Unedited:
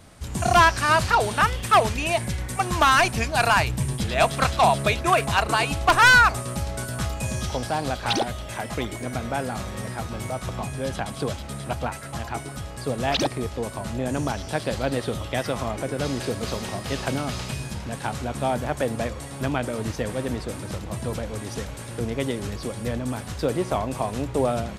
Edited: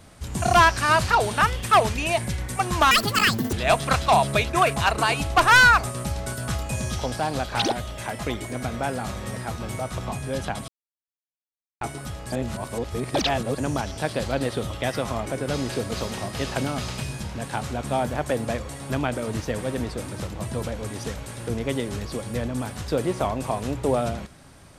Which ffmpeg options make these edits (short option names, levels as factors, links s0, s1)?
-filter_complex "[0:a]asplit=7[s0][s1][s2][s3][s4][s5][s6];[s0]atrim=end=2.914[s7];[s1]atrim=start=2.91:end=4.04,asetpts=PTS-STARTPTS,asetrate=80262,aresample=44100[s8];[s2]atrim=start=4.036:end=11.19,asetpts=PTS-STARTPTS,afade=t=out:st=7.15:d=0.004:c=hsin[s9];[s3]atrim=start=11.19:end=12.32,asetpts=PTS-STARTPTS,volume=0[s10];[s4]atrim=start=12.32:end=12.832,asetpts=PTS-STARTPTS,afade=t=in:d=0.004:c=hsin[s11];[s5]atrim=start=12.828:end=14.092,asetpts=PTS-STARTPTS,areverse[s12];[s6]atrim=start=14.088[s13];[s7][s8]acrossfade=d=0.004:c1=hsin:c2=hsin[s14];[s9][s10][s11]concat=n=3:v=0:a=1[s15];[s14][s15]acrossfade=d=0.004:c1=hsin:c2=hsin[s16];[s16][s12]acrossfade=d=0.004:c1=hsin:c2=hsin[s17];[s17][s13]acrossfade=d=0.004:c1=hsin:c2=hsin"